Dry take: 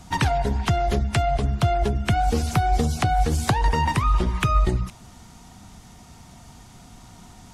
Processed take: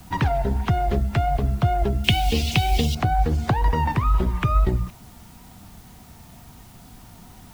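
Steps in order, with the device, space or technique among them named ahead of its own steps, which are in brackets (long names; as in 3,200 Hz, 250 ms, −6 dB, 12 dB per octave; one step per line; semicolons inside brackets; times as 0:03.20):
cassette deck with a dirty head (head-to-tape spacing loss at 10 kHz 23 dB; tape wow and flutter; white noise bed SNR 31 dB)
0:02.04–0:02.95: high shelf with overshoot 2,000 Hz +12.5 dB, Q 3
level +1 dB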